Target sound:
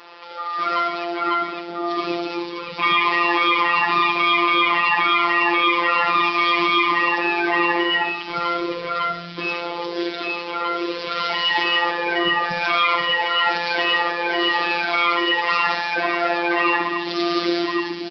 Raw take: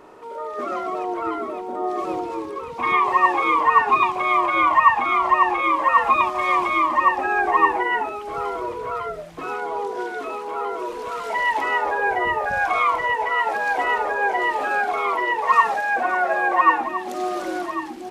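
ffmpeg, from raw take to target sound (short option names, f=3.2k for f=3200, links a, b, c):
-filter_complex "[0:a]highpass=79,aderivative,asplit=2[a][b];[b]aecho=0:1:67|134|201|268|335|402:0.237|0.13|0.0717|0.0395|0.0217|0.0119[c];[a][c]amix=inputs=2:normalize=0,asubboost=boost=11.5:cutoff=220,asplit=2[d][e];[e]asoftclip=type=hard:threshold=-28dB,volume=-9dB[f];[d][f]amix=inputs=2:normalize=0,afftfilt=real='re*lt(hypot(re,im),0.2)':imag='im*lt(hypot(re,im),0.2)':win_size=1024:overlap=0.75,afftfilt=real='hypot(re,im)*cos(PI*b)':imag='0':win_size=1024:overlap=0.75,aresample=11025,aresample=44100,alimiter=level_in=26.5dB:limit=-1dB:release=50:level=0:latency=1,volume=-3.5dB"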